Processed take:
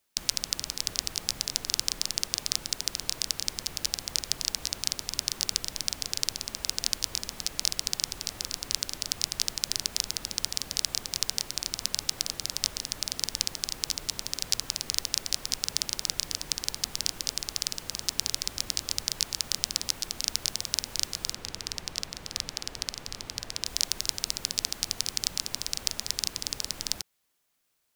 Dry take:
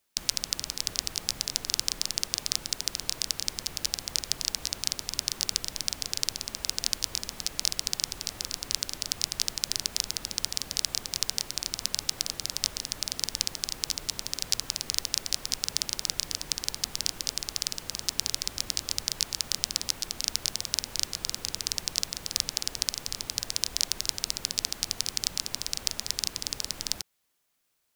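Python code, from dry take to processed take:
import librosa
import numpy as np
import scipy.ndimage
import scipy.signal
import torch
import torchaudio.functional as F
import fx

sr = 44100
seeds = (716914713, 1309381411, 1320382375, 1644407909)

y = fx.high_shelf(x, sr, hz=5700.0, db=-10.5, at=(21.33, 23.66))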